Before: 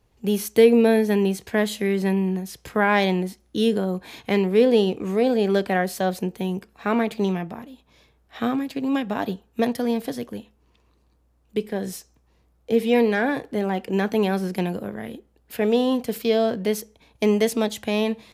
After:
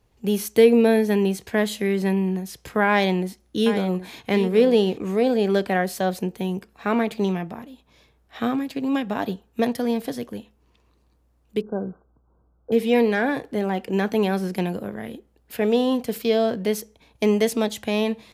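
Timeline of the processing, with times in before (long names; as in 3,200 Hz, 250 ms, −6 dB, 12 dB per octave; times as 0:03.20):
0:02.89–0:04.98: single-tap delay 772 ms −11 dB
0:11.61–0:12.72: linear-phase brick-wall low-pass 1,600 Hz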